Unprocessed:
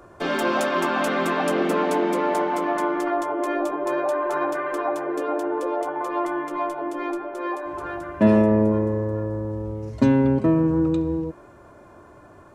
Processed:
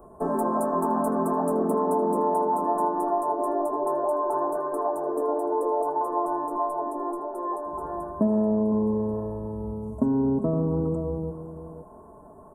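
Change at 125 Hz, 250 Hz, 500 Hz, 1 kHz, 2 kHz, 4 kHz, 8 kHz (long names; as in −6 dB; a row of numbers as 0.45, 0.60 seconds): −5.0 dB, −4.5 dB, −2.0 dB, 0.0 dB, below −20 dB, below −40 dB, can't be measured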